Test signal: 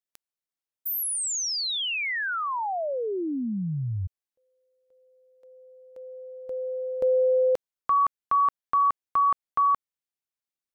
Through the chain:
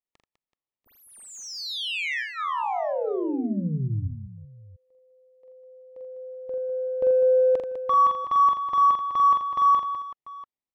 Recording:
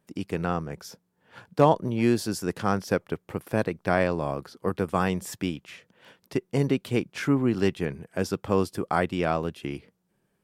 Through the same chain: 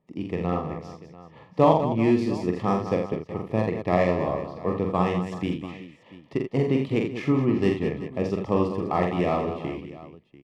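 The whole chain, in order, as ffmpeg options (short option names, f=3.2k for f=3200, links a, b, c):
-af "asuperstop=centerf=1500:order=8:qfactor=3.8,adynamicsmooth=sensitivity=1.5:basefreq=2.6k,aecho=1:1:45|83|201|379|691:0.631|0.376|0.335|0.178|0.126"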